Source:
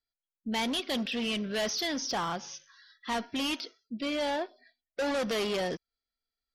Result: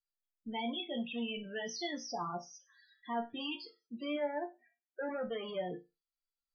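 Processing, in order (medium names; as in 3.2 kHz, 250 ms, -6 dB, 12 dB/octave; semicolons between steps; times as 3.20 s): 1.16–1.73 s: de-hum 149.2 Hz, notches 32; 4.16–5.09 s: Chebyshev band-pass 120–2500 Hz, order 5; loudest bins only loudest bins 16; chord resonator A#2 major, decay 0.23 s; trim +6.5 dB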